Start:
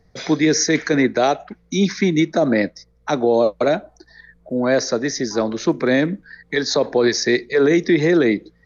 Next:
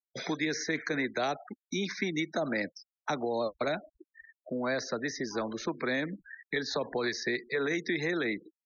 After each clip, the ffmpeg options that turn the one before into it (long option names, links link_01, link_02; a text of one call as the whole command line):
ffmpeg -i in.wav -filter_complex "[0:a]agate=range=-33dB:threshold=-42dB:ratio=3:detection=peak,afftfilt=real='re*gte(hypot(re,im),0.02)':imag='im*gte(hypot(re,im),0.02)':win_size=1024:overlap=0.75,acrossover=split=250|900|3600[link_01][link_02][link_03][link_04];[link_01]acompressor=threshold=-35dB:ratio=4[link_05];[link_02]acompressor=threshold=-29dB:ratio=4[link_06];[link_03]acompressor=threshold=-25dB:ratio=4[link_07];[link_04]acompressor=threshold=-39dB:ratio=4[link_08];[link_05][link_06][link_07][link_08]amix=inputs=4:normalize=0,volume=-6.5dB" out.wav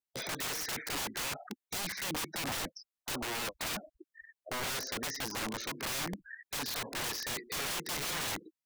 ffmpeg -i in.wav -af "aeval=exprs='(mod(35.5*val(0)+1,2)-1)/35.5':channel_layout=same" out.wav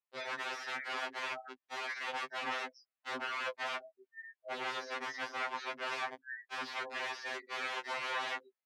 ffmpeg -i in.wav -af "highpass=550,lowpass=2300,afftfilt=real='re*2.45*eq(mod(b,6),0)':imag='im*2.45*eq(mod(b,6),0)':win_size=2048:overlap=0.75,volume=5.5dB" out.wav